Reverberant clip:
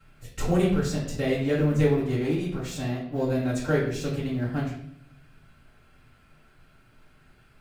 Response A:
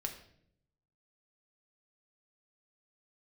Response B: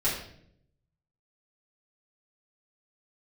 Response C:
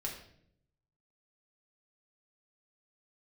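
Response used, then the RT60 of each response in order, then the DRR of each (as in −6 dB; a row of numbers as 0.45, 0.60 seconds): B; 0.65, 0.65, 0.65 seconds; 2.5, −10.5, −2.5 decibels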